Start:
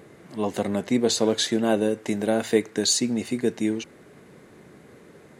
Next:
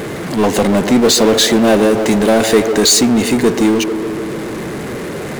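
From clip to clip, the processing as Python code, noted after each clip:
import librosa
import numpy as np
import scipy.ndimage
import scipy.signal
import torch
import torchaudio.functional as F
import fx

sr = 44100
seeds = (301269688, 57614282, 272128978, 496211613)

y = fx.echo_wet_bandpass(x, sr, ms=146, feedback_pct=67, hz=530.0, wet_db=-13)
y = fx.power_curve(y, sr, exponent=0.5)
y = F.gain(torch.from_numpy(y), 5.0).numpy()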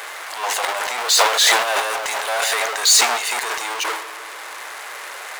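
y = scipy.signal.sosfilt(scipy.signal.butter(4, 810.0, 'highpass', fs=sr, output='sos'), x)
y = fx.transient(y, sr, attack_db=-3, sustain_db=11)
y = F.gain(torch.from_numpy(y), -1.5).numpy()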